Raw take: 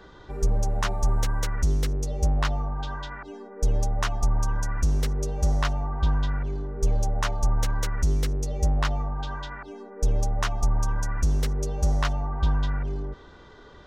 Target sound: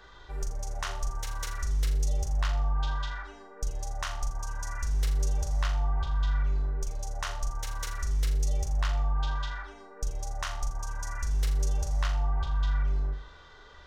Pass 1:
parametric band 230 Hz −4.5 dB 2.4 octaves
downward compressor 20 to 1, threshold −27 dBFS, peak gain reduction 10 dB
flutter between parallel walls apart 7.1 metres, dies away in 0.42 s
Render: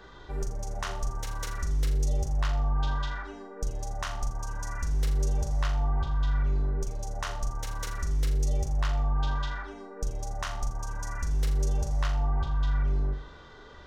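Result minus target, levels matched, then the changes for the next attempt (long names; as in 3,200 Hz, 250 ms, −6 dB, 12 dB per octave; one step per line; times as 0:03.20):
250 Hz band +6.5 dB
change: parametric band 230 Hz −15 dB 2.4 octaves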